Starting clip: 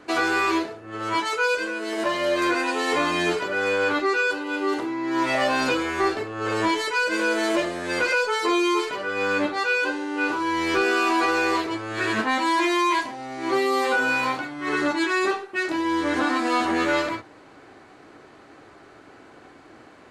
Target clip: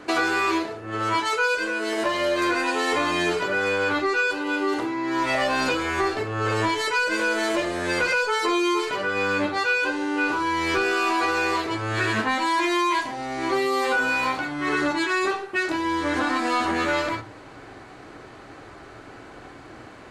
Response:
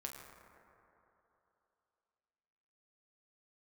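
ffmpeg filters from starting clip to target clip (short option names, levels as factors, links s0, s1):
-filter_complex "[0:a]acompressor=threshold=0.0355:ratio=2,asplit=2[s0][s1];[s1]asubboost=boost=8.5:cutoff=140[s2];[1:a]atrim=start_sample=2205,atrim=end_sample=3969,asetrate=26019,aresample=44100[s3];[s2][s3]afir=irnorm=-1:irlink=0,volume=0.316[s4];[s0][s4]amix=inputs=2:normalize=0,volume=1.5"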